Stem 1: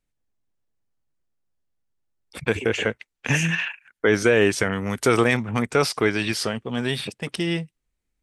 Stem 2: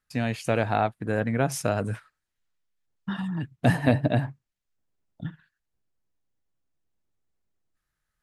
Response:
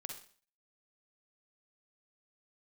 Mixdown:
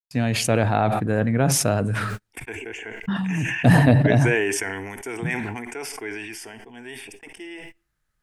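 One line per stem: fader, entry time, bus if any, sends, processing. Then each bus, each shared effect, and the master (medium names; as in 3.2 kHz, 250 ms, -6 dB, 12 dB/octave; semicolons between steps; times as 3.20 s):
-11.0 dB, 0.00 s, send -8 dB, static phaser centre 820 Hz, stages 8
0.0 dB, 0.00 s, send -14 dB, bass shelf 350 Hz +11.5 dB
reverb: on, RT60 0.45 s, pre-delay 42 ms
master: bass shelf 310 Hz -7 dB; gate -51 dBFS, range -38 dB; decay stretcher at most 27 dB/s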